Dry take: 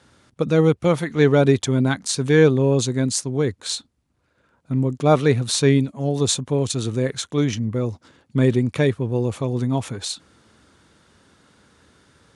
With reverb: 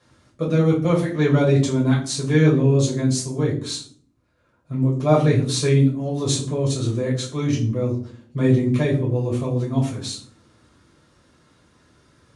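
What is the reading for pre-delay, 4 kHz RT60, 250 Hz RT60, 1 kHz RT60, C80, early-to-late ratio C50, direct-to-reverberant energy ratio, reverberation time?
5 ms, 0.35 s, 0.85 s, 0.45 s, 13.0 dB, 8.5 dB, -5.0 dB, 0.50 s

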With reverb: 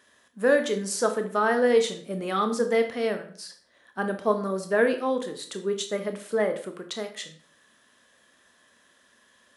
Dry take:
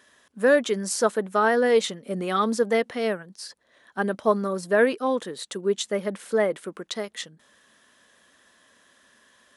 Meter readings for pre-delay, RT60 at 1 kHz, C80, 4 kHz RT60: 19 ms, 0.45 s, 14.5 dB, 0.40 s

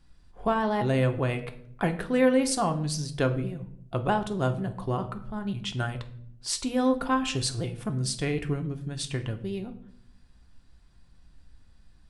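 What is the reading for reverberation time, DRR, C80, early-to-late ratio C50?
0.65 s, 6.0 dB, 16.5 dB, 13.0 dB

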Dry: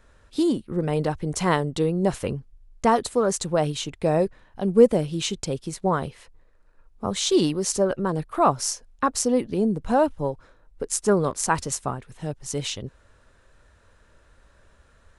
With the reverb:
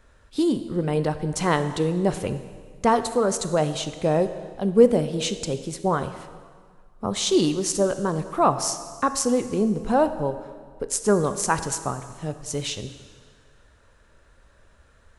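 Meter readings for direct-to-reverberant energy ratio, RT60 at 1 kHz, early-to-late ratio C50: 10.0 dB, 1.8 s, 11.5 dB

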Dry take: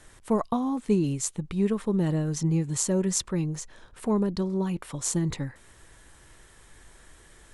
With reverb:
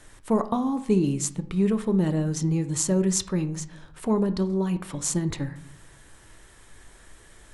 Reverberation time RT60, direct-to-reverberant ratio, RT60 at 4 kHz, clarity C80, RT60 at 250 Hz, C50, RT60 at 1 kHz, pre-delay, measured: 0.65 s, 10.5 dB, 0.40 s, 18.0 dB, 0.85 s, 14.5 dB, 0.65 s, 3 ms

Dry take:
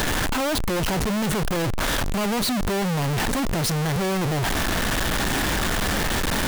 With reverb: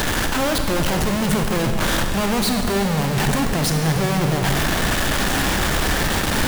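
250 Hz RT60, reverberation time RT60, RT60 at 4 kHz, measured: 2.8 s, 2.5 s, 2.1 s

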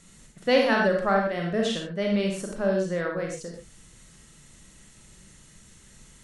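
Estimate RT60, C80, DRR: not exponential, 6.5 dB, 0.0 dB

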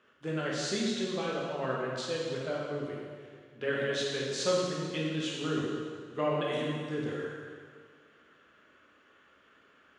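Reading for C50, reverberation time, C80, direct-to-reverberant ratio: -1.0 dB, 1.9 s, 1.0 dB, -5.0 dB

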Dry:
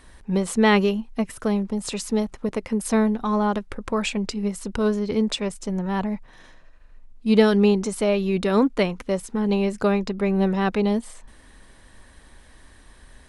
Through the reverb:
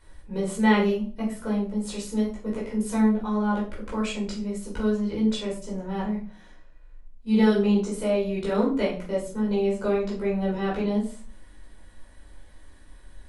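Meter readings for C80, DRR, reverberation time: 11.5 dB, -6.0 dB, 0.40 s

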